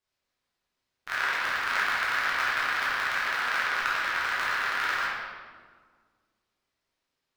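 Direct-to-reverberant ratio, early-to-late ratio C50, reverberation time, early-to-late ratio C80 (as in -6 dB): -8.0 dB, -1.5 dB, 1.7 s, 1.0 dB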